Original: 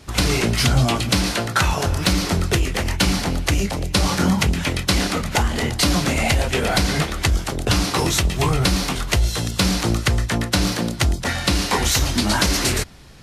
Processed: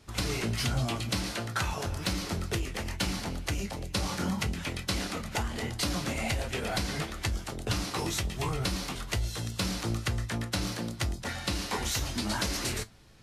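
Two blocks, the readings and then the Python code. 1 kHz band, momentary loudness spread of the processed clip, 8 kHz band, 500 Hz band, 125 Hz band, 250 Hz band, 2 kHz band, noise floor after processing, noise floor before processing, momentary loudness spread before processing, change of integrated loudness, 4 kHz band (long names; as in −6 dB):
−12.5 dB, 4 LU, −12.0 dB, −12.5 dB, −12.0 dB, −12.5 dB, −12.0 dB, −43 dBFS, −30 dBFS, 4 LU, −12.5 dB, −12.0 dB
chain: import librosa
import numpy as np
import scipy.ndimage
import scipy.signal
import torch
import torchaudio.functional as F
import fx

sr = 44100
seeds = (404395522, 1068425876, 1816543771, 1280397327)

y = fx.comb_fb(x, sr, f0_hz=110.0, decay_s=0.16, harmonics='all', damping=0.0, mix_pct=60)
y = y * librosa.db_to_amplitude(-8.0)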